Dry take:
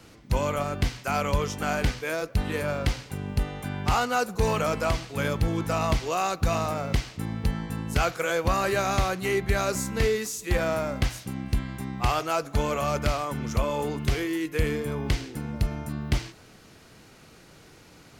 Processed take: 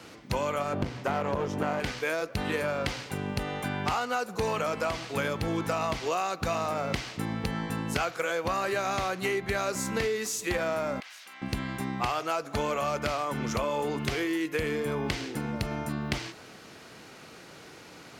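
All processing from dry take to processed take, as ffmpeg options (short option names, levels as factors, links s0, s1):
-filter_complex "[0:a]asettb=1/sr,asplit=3[s0][s1][s2];[s0]atrim=end=0.734[s3];[s1]atrim=start=0.73:end=1.8,asetpts=PTS-STARTPTS,afade=t=in:d=0.004:c=qsin,afade=t=out:st=1.066:d=0.004:c=qsin,highpass=f=62:w=0.5412,highpass=f=62:w=1.3066,tiltshelf=f=1200:g=8.5,aeval=exprs='clip(val(0),-1,0.0398)':c=same[s4];[s2]atrim=start=1.796[s5];[s3][s4]acrossfade=d=0.004:c1=hsin:c2=qsin[s6];[s6][s5]acrossfade=d=0.004:c1=qsin:c2=hsin,asettb=1/sr,asplit=3[s7][s8][s9];[s7]atrim=end=11.004[s10];[s8]atrim=start=11:end=11.42,asetpts=PTS-STARTPTS,afade=t=in:d=0.004:c=qsin,afade=t=out:st=0.416:d=0.004:c=qsin,highpass=1400,equalizer=f=9600:t=o:w=2:g=-7.5,acompressor=threshold=0.00447:ratio=8:attack=3.2:release=140:knee=1:detection=peak[s11];[s9]atrim=start=11.416[s12];[s10][s11]acrossfade=d=0.004:c1=hsin:c2=qsin[s13];[s13][s12]acrossfade=d=0.004:c1=qsin:c2=hsin,highpass=f=290:p=1,highshelf=f=6800:g=-7,acompressor=threshold=0.0251:ratio=6,volume=2"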